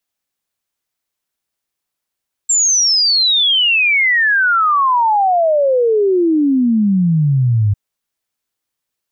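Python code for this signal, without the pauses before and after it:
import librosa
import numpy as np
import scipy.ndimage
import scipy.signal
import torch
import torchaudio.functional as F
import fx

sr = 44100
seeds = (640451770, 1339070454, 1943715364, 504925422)

y = fx.ess(sr, length_s=5.25, from_hz=7500.0, to_hz=99.0, level_db=-10.0)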